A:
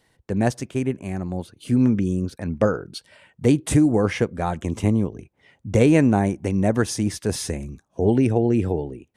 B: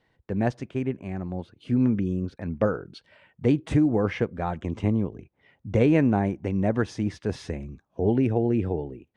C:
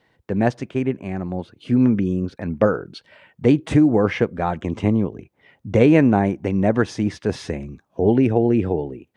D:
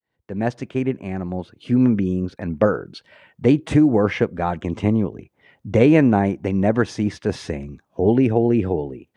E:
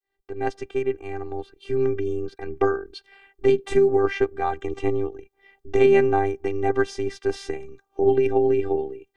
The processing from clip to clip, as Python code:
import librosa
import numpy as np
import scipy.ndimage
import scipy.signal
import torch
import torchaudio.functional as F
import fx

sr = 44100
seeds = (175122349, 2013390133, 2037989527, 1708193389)

y1 = scipy.signal.sosfilt(scipy.signal.butter(2, 3200.0, 'lowpass', fs=sr, output='sos'), x)
y1 = y1 * 10.0 ** (-4.0 / 20.0)
y2 = fx.low_shelf(y1, sr, hz=75.0, db=-11.0)
y2 = y2 * 10.0 ** (7.0 / 20.0)
y3 = fx.fade_in_head(y2, sr, length_s=0.67)
y4 = fx.robotise(y3, sr, hz=394.0)